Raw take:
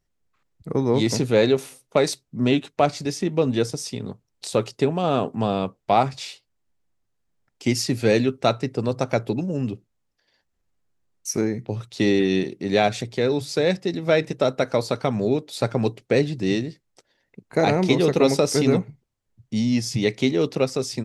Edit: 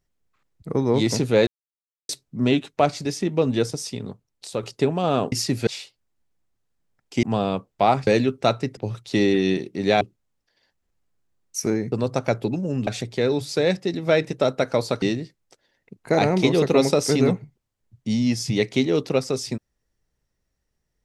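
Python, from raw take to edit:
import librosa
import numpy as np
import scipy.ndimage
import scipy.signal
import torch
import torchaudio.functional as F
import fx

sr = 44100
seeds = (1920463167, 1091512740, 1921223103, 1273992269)

y = fx.edit(x, sr, fx.silence(start_s=1.47, length_s=0.62),
    fx.fade_out_to(start_s=3.87, length_s=0.76, floor_db=-7.0),
    fx.swap(start_s=5.32, length_s=0.84, other_s=7.72, other_length_s=0.35),
    fx.swap(start_s=8.77, length_s=0.95, other_s=11.63, other_length_s=1.24),
    fx.cut(start_s=15.02, length_s=1.46), tone=tone)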